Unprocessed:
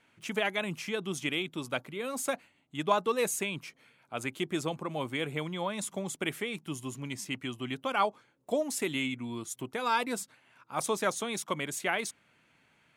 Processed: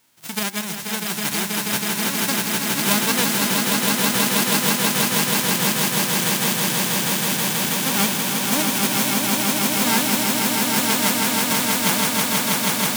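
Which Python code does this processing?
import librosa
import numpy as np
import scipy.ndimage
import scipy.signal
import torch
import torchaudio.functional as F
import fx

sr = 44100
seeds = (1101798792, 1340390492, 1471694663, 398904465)

y = fx.envelope_flatten(x, sr, power=0.1)
y = fx.echo_swell(y, sr, ms=161, loudest=8, wet_db=-4)
y = y * librosa.db_to_amplitude(5.5)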